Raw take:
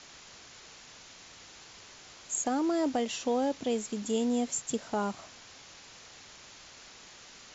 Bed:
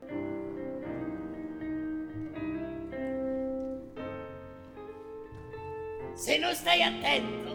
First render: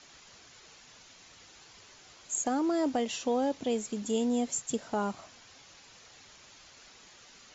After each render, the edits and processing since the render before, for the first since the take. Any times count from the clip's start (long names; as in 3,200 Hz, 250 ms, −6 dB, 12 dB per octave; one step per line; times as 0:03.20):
broadband denoise 6 dB, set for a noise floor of −52 dBFS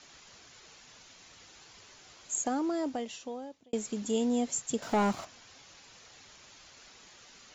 0:02.31–0:03.73: fade out
0:04.82–0:05.25: leveller curve on the samples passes 2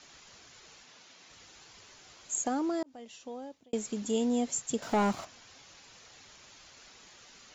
0:00.83–0:01.30: band-pass filter 170–6,500 Hz
0:02.83–0:03.47: fade in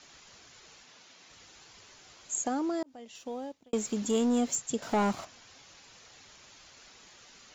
0:03.15–0:04.56: leveller curve on the samples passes 1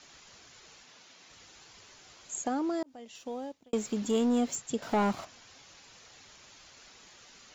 dynamic equaliser 7,100 Hz, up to −5 dB, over −51 dBFS, Q 1.4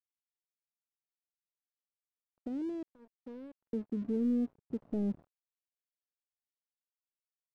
Gaussian smoothing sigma 21 samples
dead-zone distortion −55 dBFS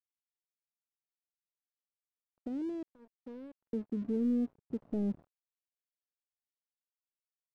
no processing that can be heard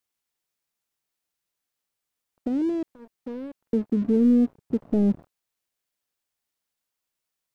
level +12 dB